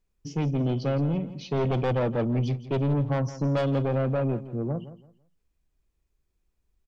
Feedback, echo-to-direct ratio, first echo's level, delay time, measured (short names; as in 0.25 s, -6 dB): 25%, -14.0 dB, -14.5 dB, 0.167 s